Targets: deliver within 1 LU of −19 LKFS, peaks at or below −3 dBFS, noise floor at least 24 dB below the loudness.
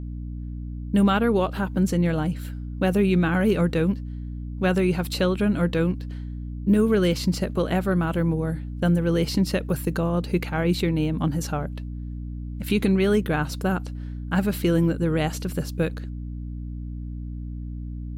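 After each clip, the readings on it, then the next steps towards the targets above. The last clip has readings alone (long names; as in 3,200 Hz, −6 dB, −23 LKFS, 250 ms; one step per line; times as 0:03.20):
mains hum 60 Hz; hum harmonics up to 300 Hz; level of the hum −30 dBFS; integrated loudness −23.5 LKFS; sample peak −9.5 dBFS; target loudness −19.0 LKFS
→ hum removal 60 Hz, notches 5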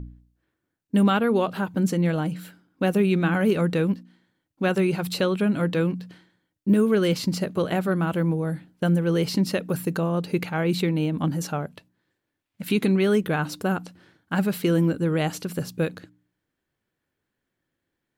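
mains hum none found; integrated loudness −24.0 LKFS; sample peak −10.5 dBFS; target loudness −19.0 LKFS
→ level +5 dB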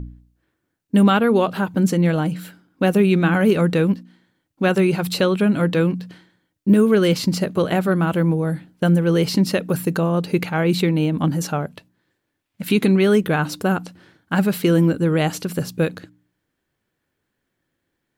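integrated loudness −19.0 LKFS; sample peak −5.5 dBFS; background noise floor −76 dBFS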